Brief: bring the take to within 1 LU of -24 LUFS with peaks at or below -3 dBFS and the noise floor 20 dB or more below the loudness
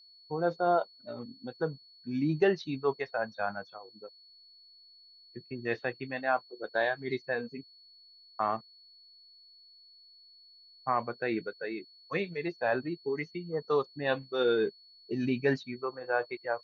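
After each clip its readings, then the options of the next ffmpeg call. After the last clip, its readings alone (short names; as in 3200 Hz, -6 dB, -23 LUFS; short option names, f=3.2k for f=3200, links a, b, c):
steady tone 4400 Hz; tone level -55 dBFS; loudness -32.5 LUFS; peak -14.5 dBFS; loudness target -24.0 LUFS
-> -af "bandreject=f=4.4k:w=30"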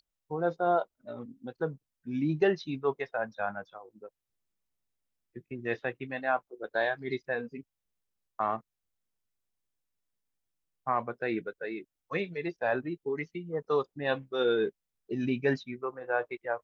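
steady tone none; loudness -32.5 LUFS; peak -14.5 dBFS; loudness target -24.0 LUFS
-> -af "volume=8.5dB"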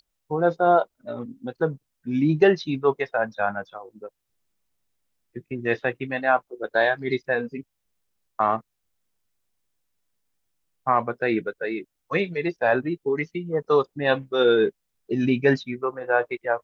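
loudness -24.0 LUFS; peak -6.0 dBFS; noise floor -78 dBFS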